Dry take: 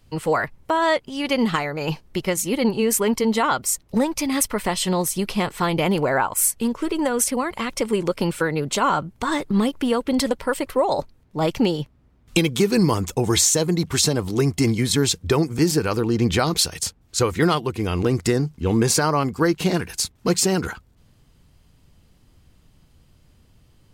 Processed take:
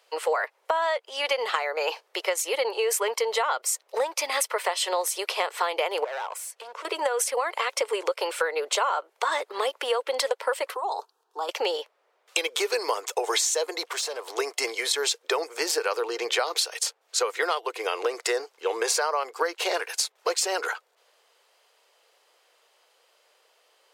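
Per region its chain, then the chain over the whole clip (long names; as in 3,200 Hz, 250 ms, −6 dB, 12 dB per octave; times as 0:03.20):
0:06.04–0:06.85: downward compressor 3 to 1, threshold −31 dBFS + high-shelf EQ 9,100 Hz −7.5 dB + gain into a clipping stage and back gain 32.5 dB
0:10.74–0:11.49: downward compressor 4 to 1, threshold −25 dBFS + phaser with its sweep stopped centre 570 Hz, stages 6
0:13.85–0:14.37: downward compressor 20 to 1, threshold −24 dBFS + hard clipping −25 dBFS
whole clip: Butterworth high-pass 450 Hz 48 dB per octave; high-shelf EQ 7,800 Hz −7.5 dB; downward compressor, threshold −26 dBFS; level +4 dB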